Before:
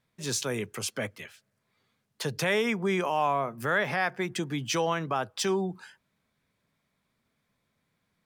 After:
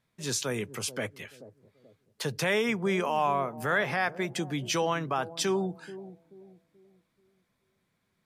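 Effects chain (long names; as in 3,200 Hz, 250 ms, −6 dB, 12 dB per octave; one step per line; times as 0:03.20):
bucket-brigade delay 432 ms, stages 2,048, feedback 35%, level −14.5 dB
MP3 64 kbit/s 32,000 Hz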